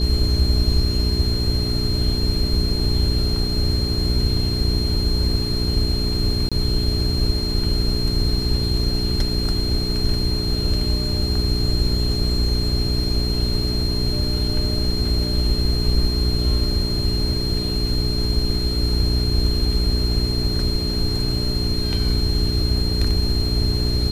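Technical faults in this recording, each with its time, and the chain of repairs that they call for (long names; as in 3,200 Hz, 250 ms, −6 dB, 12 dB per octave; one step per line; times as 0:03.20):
mains hum 60 Hz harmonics 7 −24 dBFS
whistle 4,200 Hz −26 dBFS
0:06.49–0:06.52: drop-out 26 ms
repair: notch filter 4,200 Hz, Q 30
hum removal 60 Hz, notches 7
repair the gap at 0:06.49, 26 ms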